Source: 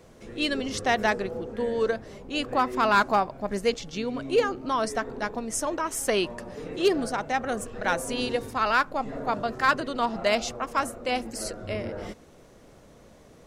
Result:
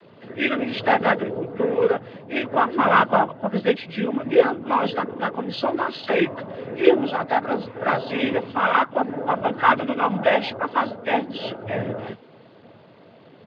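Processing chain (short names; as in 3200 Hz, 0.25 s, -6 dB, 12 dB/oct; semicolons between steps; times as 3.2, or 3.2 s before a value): nonlinear frequency compression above 1200 Hz 1.5:1; downsampling 8000 Hz; noise vocoder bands 16; gain +6 dB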